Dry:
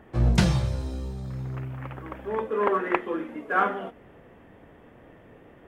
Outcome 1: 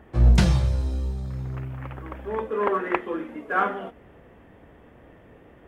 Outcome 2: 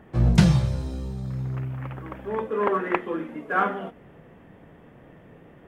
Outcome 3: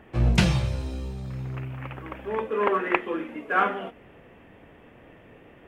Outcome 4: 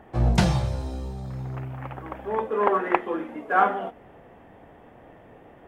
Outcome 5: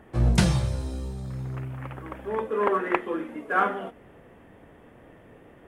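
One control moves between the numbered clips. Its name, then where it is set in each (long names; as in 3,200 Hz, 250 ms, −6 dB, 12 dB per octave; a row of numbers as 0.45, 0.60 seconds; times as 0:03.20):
parametric band, centre frequency: 61, 160, 2,600, 770, 9,600 Hertz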